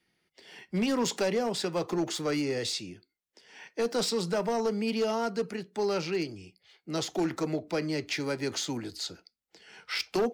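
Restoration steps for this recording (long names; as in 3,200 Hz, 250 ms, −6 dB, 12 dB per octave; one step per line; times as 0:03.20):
clipped peaks rebuilt −22.5 dBFS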